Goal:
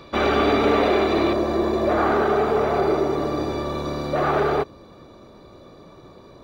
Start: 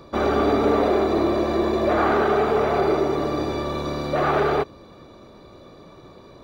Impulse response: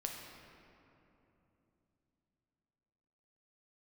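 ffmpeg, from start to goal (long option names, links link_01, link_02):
-af "asetnsamples=nb_out_samples=441:pad=0,asendcmd='1.33 equalizer g -2',equalizer=frequency=2700:width=0.95:gain=9.5"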